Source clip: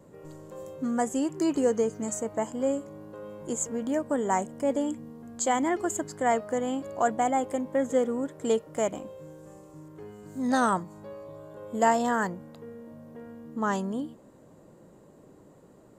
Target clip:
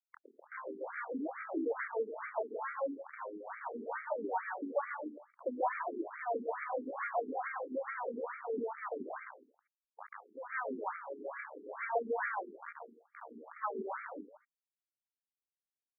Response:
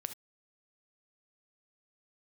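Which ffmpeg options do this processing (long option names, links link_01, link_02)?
-filter_complex "[0:a]bass=frequency=250:gain=-12,treble=frequency=4000:gain=-11,aeval=exprs='(tanh(25.1*val(0)+0.2)-tanh(0.2))/25.1':channel_layout=same,aresample=16000,acrusher=bits=4:dc=4:mix=0:aa=0.000001,aresample=44100,adynamicequalizer=threshold=0.00282:dfrequency=270:dqfactor=0.98:tfrequency=270:tqfactor=0.98:attack=5:release=100:ratio=0.375:range=2.5:mode=cutabove:tftype=bell,asplit=2[link_01][link_02];[link_02]adelay=163.3,volume=-13dB,highshelf=frequency=4000:gain=-3.67[link_03];[link_01][link_03]amix=inputs=2:normalize=0,tremolo=f=7.1:d=0.49,asplit=2[link_04][link_05];[1:a]atrim=start_sample=2205,adelay=138[link_06];[link_05][link_06]afir=irnorm=-1:irlink=0,volume=1.5dB[link_07];[link_04][link_07]amix=inputs=2:normalize=0,afftfilt=real='re*between(b*sr/1024,300*pow(1700/300,0.5+0.5*sin(2*PI*2.3*pts/sr))/1.41,300*pow(1700/300,0.5+0.5*sin(2*PI*2.3*pts/sr))*1.41)':imag='im*between(b*sr/1024,300*pow(1700/300,0.5+0.5*sin(2*PI*2.3*pts/sr))/1.41,300*pow(1700/300,0.5+0.5*sin(2*PI*2.3*pts/sr))*1.41)':win_size=1024:overlap=0.75,volume=8.5dB"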